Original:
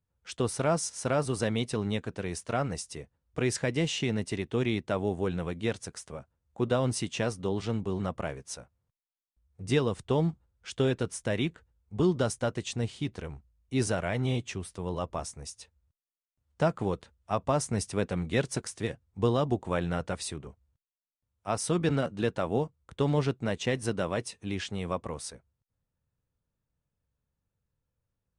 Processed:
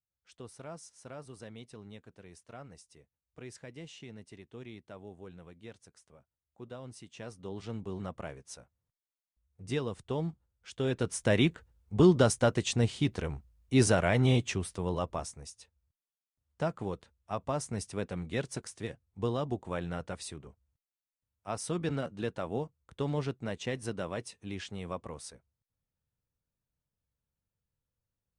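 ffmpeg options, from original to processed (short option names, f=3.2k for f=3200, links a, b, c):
-af "volume=4dB,afade=t=in:st=7.07:d=0.8:silence=0.281838,afade=t=in:st=10.79:d=0.53:silence=0.281838,afade=t=out:st=14.45:d=1.08:silence=0.316228"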